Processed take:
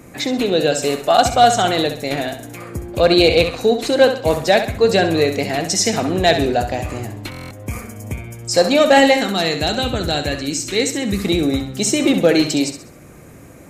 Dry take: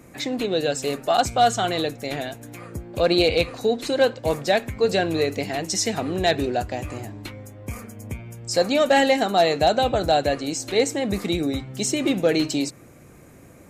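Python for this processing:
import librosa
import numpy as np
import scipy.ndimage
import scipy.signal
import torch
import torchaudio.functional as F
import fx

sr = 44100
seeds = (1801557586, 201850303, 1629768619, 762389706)

y = fx.peak_eq(x, sr, hz=680.0, db=-12.5, octaves=1.1, at=(9.17, 11.25))
y = fx.echo_feedback(y, sr, ms=66, feedback_pct=38, wet_db=-9.0)
y = fx.buffer_glitch(y, sr, at_s=(7.3,), block=1024, repeats=8)
y = y * 10.0 ** (6.0 / 20.0)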